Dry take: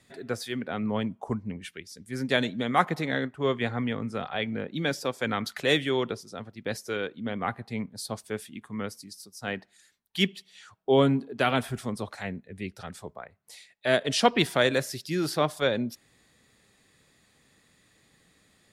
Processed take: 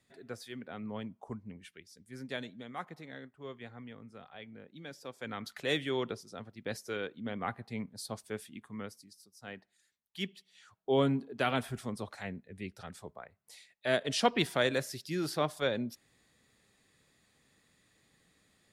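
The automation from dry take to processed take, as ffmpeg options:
ffmpeg -i in.wav -af "volume=8dB,afade=type=out:start_time=1.97:duration=0.78:silence=0.446684,afade=type=in:start_time=4.9:duration=1.13:silence=0.237137,afade=type=out:start_time=8.57:duration=0.57:silence=0.446684,afade=type=in:start_time=10.19:duration=0.92:silence=0.446684" out.wav

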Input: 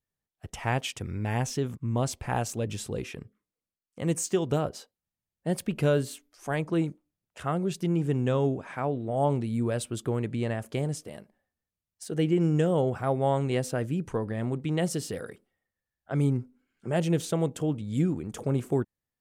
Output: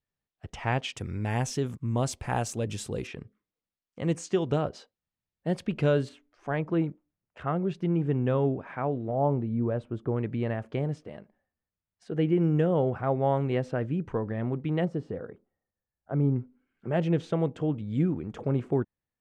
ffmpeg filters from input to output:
ffmpeg -i in.wav -af "asetnsamples=nb_out_samples=441:pad=0,asendcmd='0.97 lowpass f 11000;3.07 lowpass f 4400;6.09 lowpass f 2300;9.11 lowpass f 1200;10.16 lowpass f 2400;14.85 lowpass f 1100;16.36 lowpass f 2600',lowpass=4600" out.wav

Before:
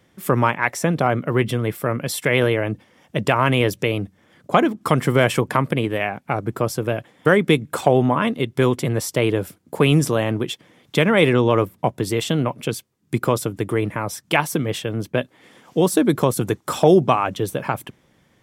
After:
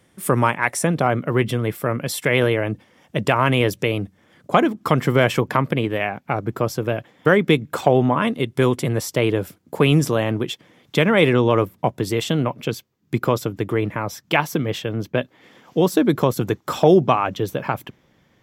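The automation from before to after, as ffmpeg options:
ffmpeg -i in.wav -af "asetnsamples=nb_out_samples=441:pad=0,asendcmd='0.87 equalizer g -1.5;4.81 equalizer g -10.5;8.18 equalizer g 1;9.01 equalizer g -5.5;12.48 equalizer g -15',equalizer=frequency=9300:width_type=o:width=0.4:gain=10" out.wav

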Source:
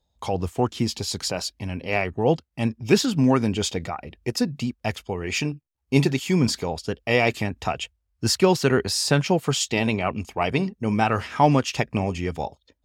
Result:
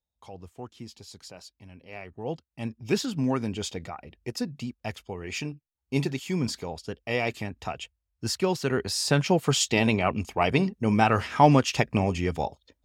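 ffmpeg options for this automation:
ffmpeg -i in.wav -af "afade=type=in:start_time=1.95:duration=0.96:silence=0.298538,afade=type=in:start_time=8.64:duration=0.96:silence=0.421697" out.wav

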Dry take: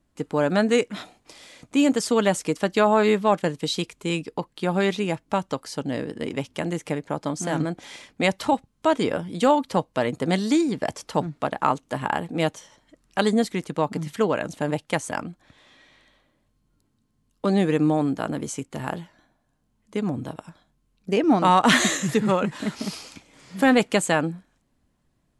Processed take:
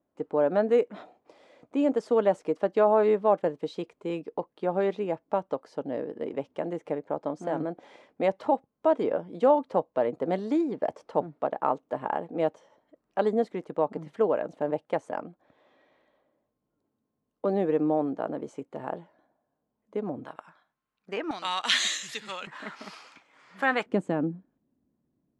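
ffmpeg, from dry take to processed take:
ffmpeg -i in.wav -af "asetnsamples=nb_out_samples=441:pad=0,asendcmd='20.25 bandpass f 1300;21.31 bandpass f 3800;22.47 bandpass f 1300;23.86 bandpass f 280',bandpass=frequency=550:width_type=q:width=1.3:csg=0" out.wav

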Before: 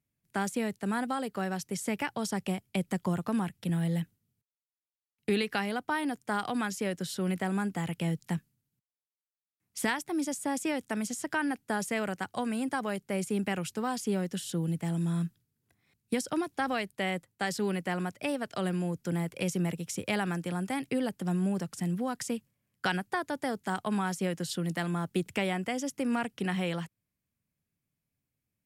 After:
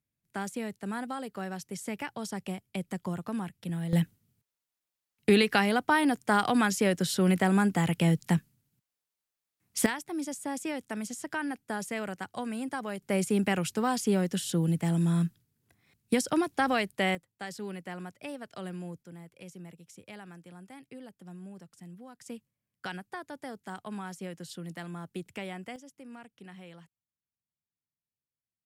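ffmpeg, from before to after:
ffmpeg -i in.wav -af "asetnsamples=nb_out_samples=441:pad=0,asendcmd='3.93 volume volume 6.5dB;9.86 volume volume -3dB;13.02 volume volume 4dB;17.15 volume volume -8dB;19.03 volume volume -16dB;22.26 volume volume -8.5dB;25.76 volume volume -17dB',volume=-4dB" out.wav

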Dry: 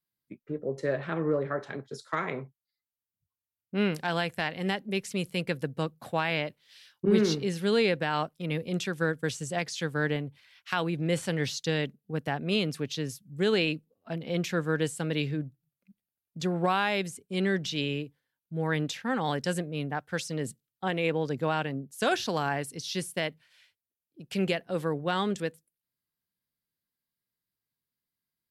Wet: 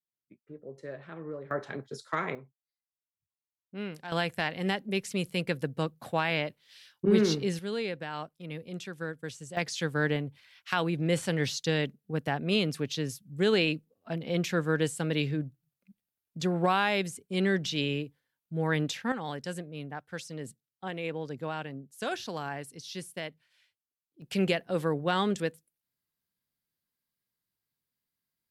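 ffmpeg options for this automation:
ffmpeg -i in.wav -af "asetnsamples=nb_out_samples=441:pad=0,asendcmd='1.51 volume volume -0.5dB;2.35 volume volume -10.5dB;4.12 volume volume 0dB;7.59 volume volume -8.5dB;9.57 volume volume 0.5dB;19.12 volume volume -7dB;24.22 volume volume 1dB',volume=-12dB" out.wav

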